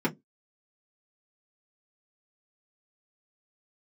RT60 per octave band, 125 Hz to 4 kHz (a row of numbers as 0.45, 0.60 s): 0.20, 0.25, 0.20, 0.10, 0.10, 0.10 s